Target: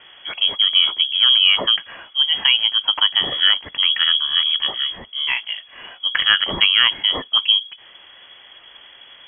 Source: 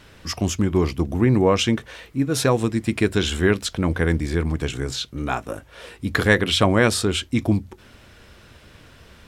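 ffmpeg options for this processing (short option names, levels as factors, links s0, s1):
-filter_complex "[0:a]asplit=2[s0][s1];[s1]alimiter=limit=0.335:level=0:latency=1:release=373,volume=1[s2];[s0][s2]amix=inputs=2:normalize=0,lowpass=f=2900:t=q:w=0.5098,lowpass=f=2900:t=q:w=0.6013,lowpass=f=2900:t=q:w=0.9,lowpass=f=2900:t=q:w=2.563,afreqshift=-3400,volume=0.75"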